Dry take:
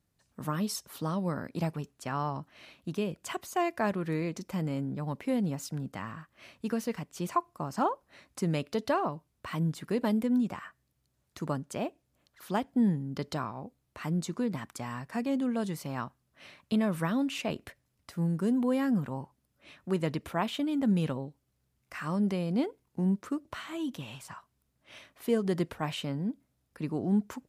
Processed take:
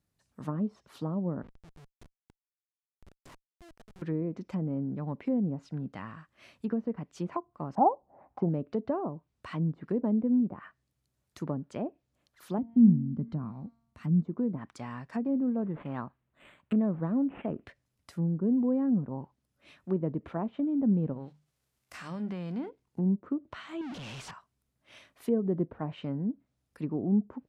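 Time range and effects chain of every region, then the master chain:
1.42–4.02 s: chorus 2.7 Hz, delay 20 ms, depth 5.9 ms + slow attack 466 ms + Schmitt trigger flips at -42.5 dBFS
7.75–8.49 s: resonant low-pass 800 Hz, resonance Q 6.3 + tape noise reduction on one side only encoder only
12.58–14.25 s: resonant low shelf 300 Hz +10.5 dB, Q 1.5 + feedback comb 230 Hz, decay 0.91 s
15.33–17.63 s: dynamic bell 2.2 kHz, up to +6 dB, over -51 dBFS, Q 0.75 + decimation joined by straight lines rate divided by 8×
21.12–22.68 s: formants flattened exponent 0.6 + hum notches 50/100/150/200 Hz + compression 2:1, threshold -37 dBFS
23.81–24.31 s: one-bit comparator + treble shelf 10 kHz -4.5 dB
whole clip: low-pass that closes with the level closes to 740 Hz, closed at -28 dBFS; dynamic bell 260 Hz, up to +5 dB, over -41 dBFS, Q 0.71; trim -3.5 dB

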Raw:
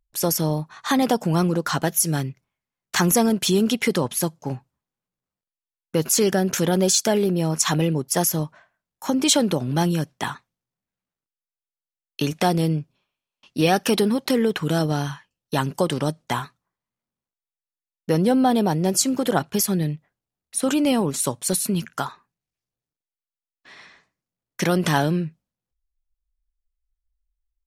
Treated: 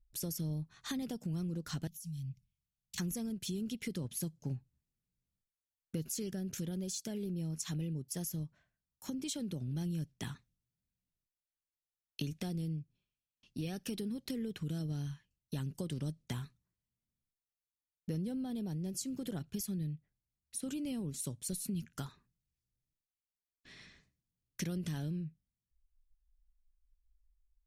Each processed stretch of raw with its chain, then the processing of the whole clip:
1.87–2.98 s: compression 10:1, threshold -32 dBFS + inverse Chebyshev band-stop 360–1500 Hz
whole clip: gain riding; amplifier tone stack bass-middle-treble 10-0-1; compression 2.5:1, threshold -51 dBFS; trim +10.5 dB

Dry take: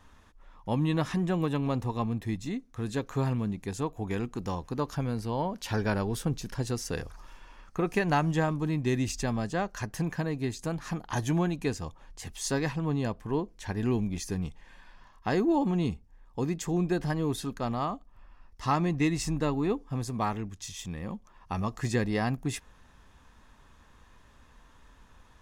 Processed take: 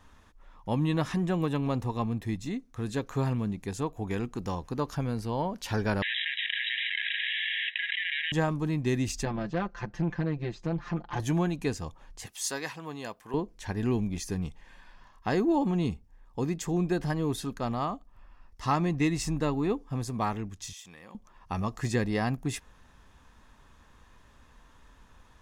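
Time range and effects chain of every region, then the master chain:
6.02–8.32 s: comb filter that takes the minimum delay 0.98 ms + brick-wall FIR band-pass 1.6–3.9 kHz + level flattener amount 100%
9.25–11.20 s: comb 5.8 ms, depth 100% + valve stage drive 23 dB, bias 0.6 + distance through air 200 m
12.26–13.34 s: high-pass 860 Hz 6 dB/octave + treble shelf 11 kHz +8.5 dB
20.73–21.15 s: high-pass 1.1 kHz 6 dB/octave + compression 2.5:1, threshold -45 dBFS
whole clip: none

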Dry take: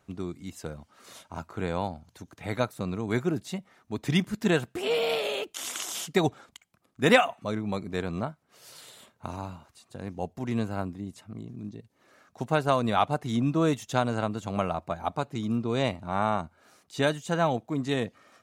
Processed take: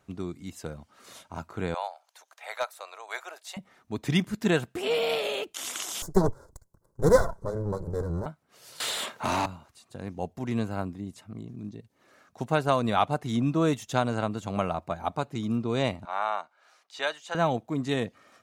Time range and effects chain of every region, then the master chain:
1.74–3.57 s: steep high-pass 600 Hz + hard clipper -20 dBFS
6.02–8.26 s: comb filter that takes the minimum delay 2 ms + Butterworth band-stop 2.7 kHz, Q 0.63 + bass shelf 400 Hz +9.5 dB
8.80–9.46 s: high-pass 100 Hz + overdrive pedal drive 30 dB, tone 5.6 kHz, clips at -17.5 dBFS
16.05–17.35 s: high-pass 230 Hz + three-band isolator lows -23 dB, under 570 Hz, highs -13 dB, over 6.3 kHz
whole clip: none

